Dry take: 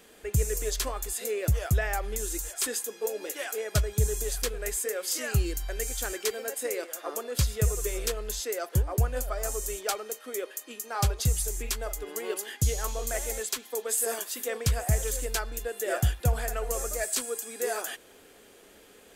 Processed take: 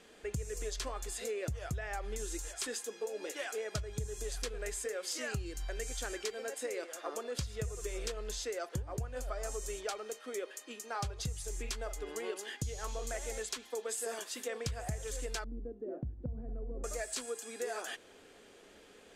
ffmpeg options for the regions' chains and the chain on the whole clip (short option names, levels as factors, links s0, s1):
-filter_complex "[0:a]asettb=1/sr,asplit=3[s0][s1][s2];[s0]atrim=end=15.444[s3];[s1]atrim=start=15.44:end=16.84,asetpts=PTS-STARTPTS,afade=t=in:d=0.004:c=qsin,afade=t=out:st=1.396:d=0.004:c=qsin,lowpass=f=260:t=q:w=2.8,acompressor=threshold=0.0251:ratio=3:attack=3.2:release=140:knee=1:detection=peak[s4];[s2]atrim=start=16.836[s5];[s3][s4]acrossfade=d=0.004:c1=hsin:c2=qsin[s6];[s6][s5]acrossfade=d=0.004:c1=qsin:c2=hsin,lowpass=7100,bandreject=f=50:t=h:w=6,bandreject=f=100:t=h:w=6,acompressor=threshold=0.0282:ratio=10,volume=0.708"